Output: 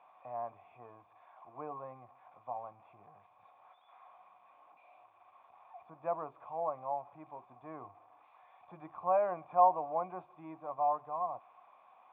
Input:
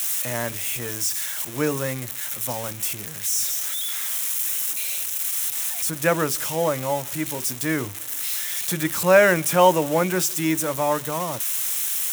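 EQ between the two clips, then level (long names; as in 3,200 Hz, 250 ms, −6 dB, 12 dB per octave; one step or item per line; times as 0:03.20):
formant resonators in series a
0.0 dB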